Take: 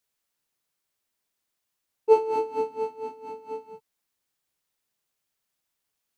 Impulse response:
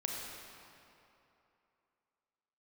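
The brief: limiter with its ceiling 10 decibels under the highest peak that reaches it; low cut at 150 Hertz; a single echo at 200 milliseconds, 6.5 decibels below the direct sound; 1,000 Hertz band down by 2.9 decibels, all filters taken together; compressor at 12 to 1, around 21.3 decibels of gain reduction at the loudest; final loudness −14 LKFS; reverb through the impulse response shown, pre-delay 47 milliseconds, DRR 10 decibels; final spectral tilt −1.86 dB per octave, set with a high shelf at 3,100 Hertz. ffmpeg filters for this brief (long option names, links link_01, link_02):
-filter_complex "[0:a]highpass=150,equalizer=frequency=1000:width_type=o:gain=-4,highshelf=frequency=3100:gain=8,acompressor=threshold=-35dB:ratio=12,alimiter=level_in=11.5dB:limit=-24dB:level=0:latency=1,volume=-11.5dB,aecho=1:1:200:0.473,asplit=2[link_01][link_02];[1:a]atrim=start_sample=2205,adelay=47[link_03];[link_02][link_03]afir=irnorm=-1:irlink=0,volume=-12.5dB[link_04];[link_01][link_04]amix=inputs=2:normalize=0,volume=29dB"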